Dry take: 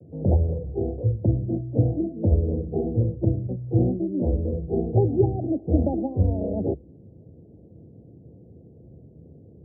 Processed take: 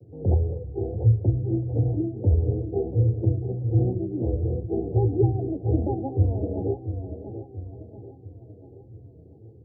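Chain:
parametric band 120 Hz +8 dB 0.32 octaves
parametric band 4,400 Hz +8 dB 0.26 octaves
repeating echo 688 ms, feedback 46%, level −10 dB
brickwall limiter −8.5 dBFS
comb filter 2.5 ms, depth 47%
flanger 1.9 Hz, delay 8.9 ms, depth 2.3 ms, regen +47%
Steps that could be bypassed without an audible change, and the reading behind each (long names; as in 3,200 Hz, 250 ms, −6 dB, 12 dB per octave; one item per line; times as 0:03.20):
parametric band 4,400 Hz: nothing at its input above 810 Hz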